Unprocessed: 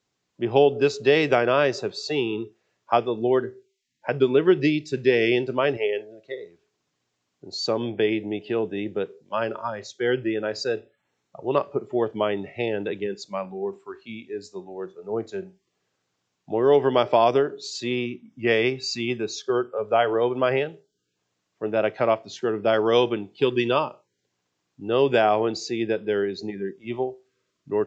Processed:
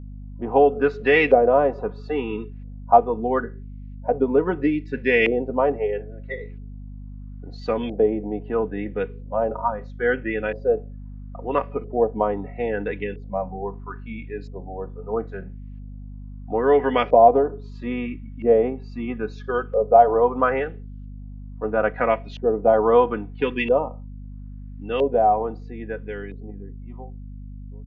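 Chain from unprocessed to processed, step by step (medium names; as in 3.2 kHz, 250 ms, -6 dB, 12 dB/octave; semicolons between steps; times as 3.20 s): fade out at the end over 4.78 s; comb 4.1 ms, depth 69%; LFO low-pass saw up 0.76 Hz 560–2600 Hz; hum 50 Hz, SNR 14 dB; trim -1.5 dB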